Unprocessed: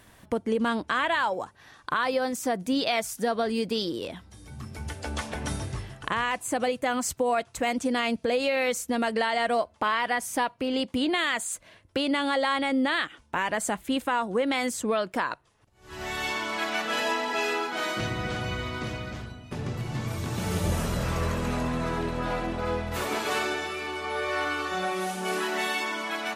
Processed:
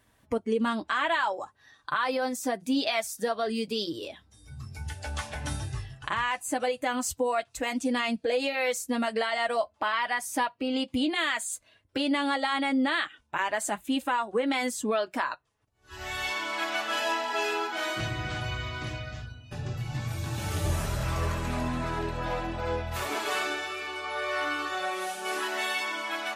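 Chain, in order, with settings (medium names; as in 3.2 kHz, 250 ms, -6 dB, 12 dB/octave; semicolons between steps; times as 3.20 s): comb of notches 180 Hz; spectral noise reduction 10 dB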